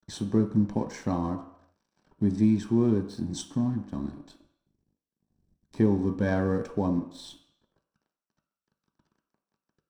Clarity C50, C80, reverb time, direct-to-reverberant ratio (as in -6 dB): 10.5 dB, 12.5 dB, not exponential, 3.5 dB